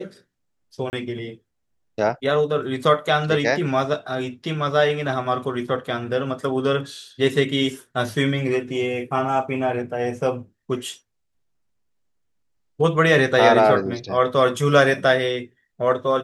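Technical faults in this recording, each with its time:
0:00.90–0:00.93: drop-out 29 ms

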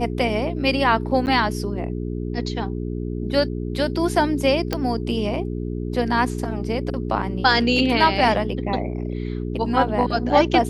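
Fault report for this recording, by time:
mains hum 60 Hz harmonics 7 −27 dBFS
0:01.26–0:01.27: drop-out 9.6 ms
0:04.73: click −9 dBFS

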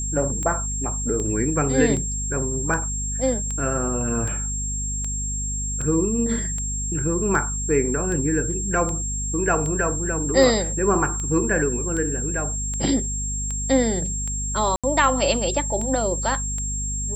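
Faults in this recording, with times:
mains hum 50 Hz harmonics 5 −29 dBFS
scratch tick 78 rpm −18 dBFS
whistle 7,500 Hz −27 dBFS
0:14.76–0:14.84: drop-out 76 ms

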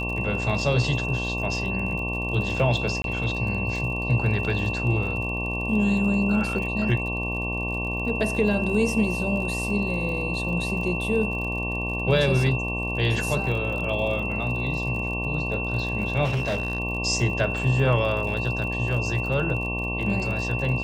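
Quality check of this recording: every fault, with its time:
mains buzz 60 Hz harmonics 19 −30 dBFS
surface crackle 49 per second −33 dBFS
whistle 2,700 Hz −29 dBFS
0:03.02–0:03.04: drop-out 22 ms
0:16.24–0:16.80: clipping −21.5 dBFS

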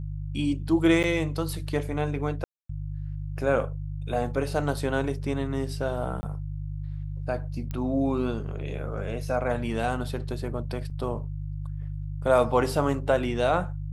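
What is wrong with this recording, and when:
mains hum 50 Hz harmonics 3 −33 dBFS
0:01.03–0:01.04: drop-out 8.5 ms
0:02.44–0:02.69: drop-out 254 ms
0:06.21–0:06.23: drop-out 20 ms
0:07.71: click −21 dBFS
0:10.90–0:10.91: drop-out 5.9 ms

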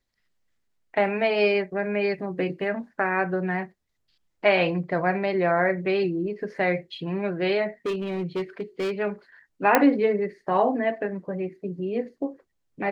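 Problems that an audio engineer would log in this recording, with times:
0:07.86–0:08.91: clipping −23.5 dBFS
0:09.75: click −3 dBFS

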